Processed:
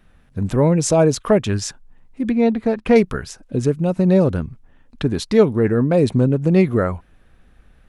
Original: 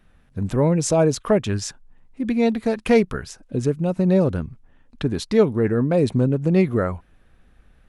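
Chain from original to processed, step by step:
0:02.30–0:02.96: low-pass filter 1,800 Hz 6 dB per octave
level +3 dB

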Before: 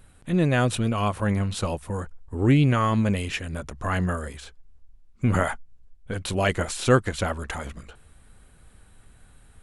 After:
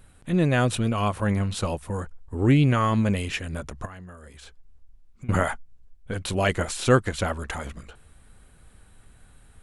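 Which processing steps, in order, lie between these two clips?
0:03.85–0:05.29: downward compressor 8 to 1, threshold −40 dBFS, peak gain reduction 22 dB

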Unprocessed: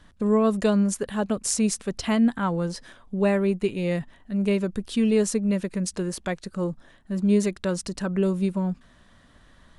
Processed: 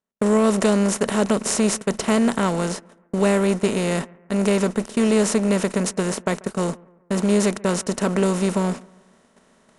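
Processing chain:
compressor on every frequency bin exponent 0.4
noise gate −23 dBFS, range −57 dB
low-shelf EQ 67 Hz −9.5 dB
reversed playback
upward compression, threshold −32 dBFS
reversed playback
bucket-brigade delay 138 ms, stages 2,048, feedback 44%, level −24 dB

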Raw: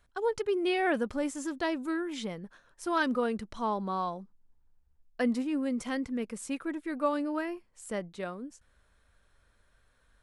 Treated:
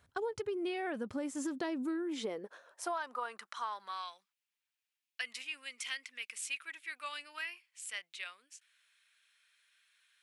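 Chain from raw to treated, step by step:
high-pass filter sweep 100 Hz → 2,500 Hz, 0:00.98–0:04.15
downward compressor 16 to 1, threshold −35 dBFS, peak gain reduction 16 dB
level +1.5 dB

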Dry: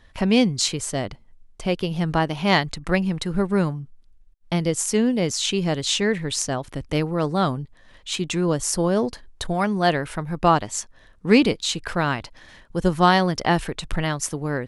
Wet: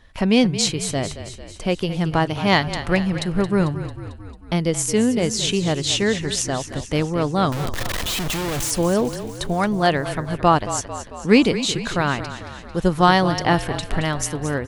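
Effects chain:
0:07.52–0:08.71: sign of each sample alone
echo with shifted repeats 223 ms, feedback 60%, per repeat −32 Hz, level −12 dB
level +1.5 dB

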